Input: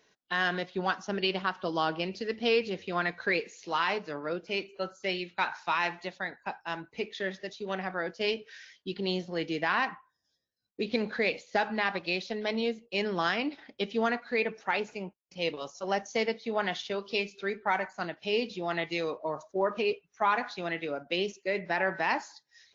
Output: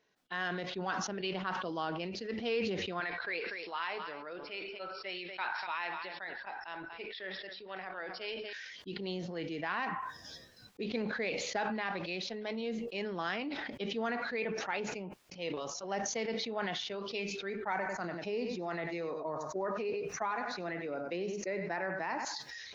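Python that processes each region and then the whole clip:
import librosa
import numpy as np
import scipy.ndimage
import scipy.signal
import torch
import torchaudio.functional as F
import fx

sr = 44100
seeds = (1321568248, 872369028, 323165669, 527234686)

y = fx.chain(x, sr, fx.brickwall_lowpass(high_hz=5600.0),
    fx.peak_eq(hz=170.0, db=-14.5, octaves=2.2),
    fx.echo_single(ms=242, db=-16.0), at=(3.0, 8.53))
y = fx.chain(y, sr, fx.peak_eq(hz=3200.0, db=-12.0, octaves=0.53),
    fx.echo_single(ms=96, db=-12.0),
    fx.band_squash(depth_pct=70), at=(17.72, 22.25))
y = fx.lowpass(y, sr, hz=4000.0, slope=6)
y = fx.sustainer(y, sr, db_per_s=24.0)
y = y * librosa.db_to_amplitude(-7.5)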